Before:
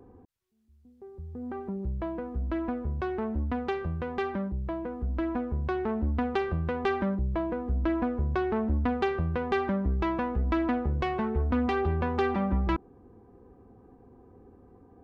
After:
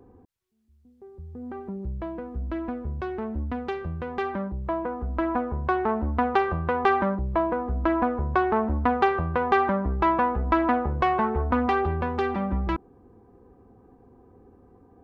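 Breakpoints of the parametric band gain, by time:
parametric band 1,000 Hz 1.9 octaves
0:03.91 0 dB
0:04.78 +11.5 dB
0:11.51 +11.5 dB
0:12.17 +1.5 dB

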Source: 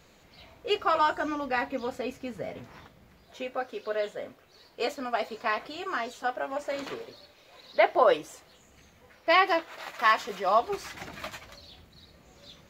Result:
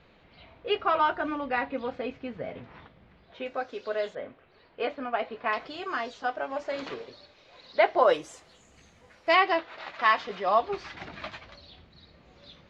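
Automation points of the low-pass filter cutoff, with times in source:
low-pass filter 24 dB per octave
3,700 Hz
from 0:03.46 6,300 Hz
from 0:04.15 3,100 Hz
from 0:05.53 5,600 Hz
from 0:07.98 9,600 Hz
from 0:09.34 4,600 Hz

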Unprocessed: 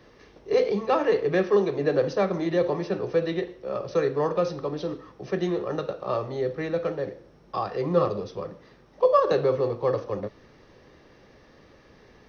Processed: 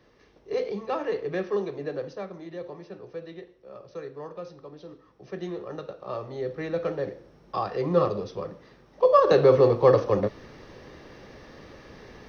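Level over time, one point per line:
0:01.65 −6.5 dB
0:02.38 −14 dB
0:04.81 −14 dB
0:05.46 −7.5 dB
0:05.97 −7.5 dB
0:06.98 0 dB
0:09.03 0 dB
0:09.58 +7 dB

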